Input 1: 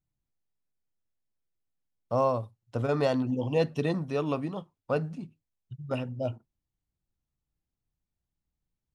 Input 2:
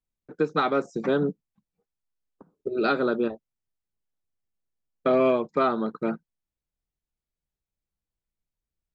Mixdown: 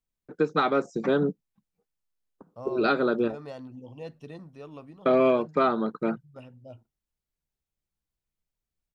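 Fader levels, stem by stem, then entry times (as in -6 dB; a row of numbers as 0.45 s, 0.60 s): -14.5 dB, 0.0 dB; 0.45 s, 0.00 s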